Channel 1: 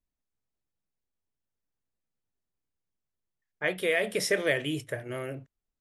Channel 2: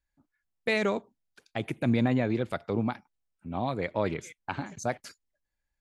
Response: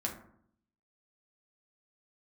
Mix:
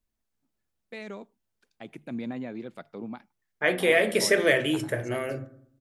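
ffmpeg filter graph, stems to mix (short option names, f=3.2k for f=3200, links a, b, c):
-filter_complex "[0:a]volume=0.5dB,asplit=2[a][b];[b]volume=-3.5dB[c];[1:a]dynaudnorm=f=260:g=9:m=4.5dB,lowshelf=f=120:t=q:w=1.5:g=-13.5,adelay=250,volume=-15dB[d];[2:a]atrim=start_sample=2205[e];[c][e]afir=irnorm=-1:irlink=0[f];[a][d][f]amix=inputs=3:normalize=0,bandreject=f=50:t=h:w=6,bandreject=f=100:t=h:w=6,bandreject=f=150:t=h:w=6"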